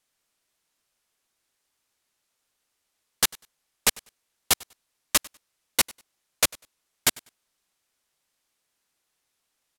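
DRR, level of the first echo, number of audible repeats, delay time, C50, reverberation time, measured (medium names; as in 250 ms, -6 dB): no reverb, -23.5 dB, 1, 98 ms, no reverb, no reverb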